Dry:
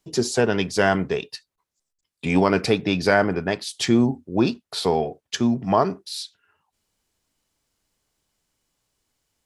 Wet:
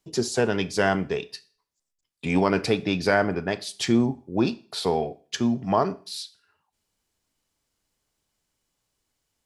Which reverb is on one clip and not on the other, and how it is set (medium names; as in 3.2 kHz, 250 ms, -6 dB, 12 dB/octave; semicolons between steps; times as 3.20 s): Schroeder reverb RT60 0.43 s, combs from 27 ms, DRR 17 dB; trim -3 dB